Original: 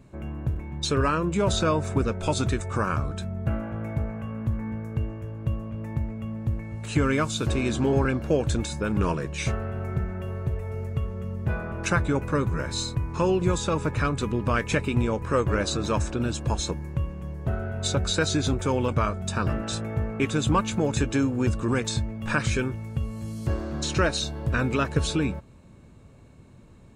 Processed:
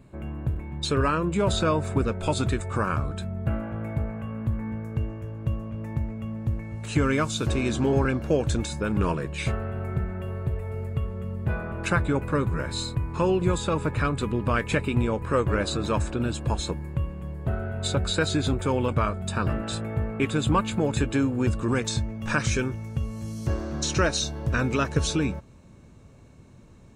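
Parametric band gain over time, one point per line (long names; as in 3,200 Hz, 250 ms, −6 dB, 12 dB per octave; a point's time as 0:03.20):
parametric band 5,900 Hz 0.27 octaves
0:04.52 −9 dB
0:04.99 0 dB
0:08.61 0 dB
0:09.25 −12 dB
0:21.20 −12 dB
0:21.67 −2.5 dB
0:22.25 +7.5 dB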